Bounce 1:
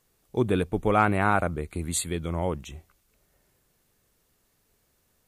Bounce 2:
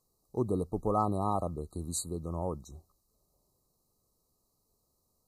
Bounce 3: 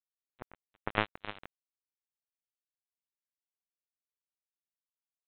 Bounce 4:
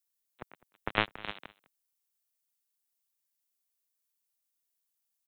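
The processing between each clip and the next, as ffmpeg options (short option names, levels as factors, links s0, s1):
-af "afftfilt=real='re*(1-between(b*sr/4096,1300,3800))':imag='im*(1-between(b*sr/4096,1300,3800))':win_size=4096:overlap=0.75,volume=0.473"
-af "aecho=1:1:280|560|840|1120|1400|1680|1960:0.335|0.188|0.105|0.0588|0.0329|0.0184|0.0103,aresample=8000,acrusher=bits=2:mix=0:aa=0.5,aresample=44100,volume=1.88"
-filter_complex "[0:a]acrossover=split=140[s0][s1];[s0]aeval=exprs='val(0)*gte(abs(val(0)),0.00299)':c=same[s2];[s1]crystalizer=i=3:c=0[s3];[s2][s3]amix=inputs=2:normalize=0,aecho=1:1:205:0.0841"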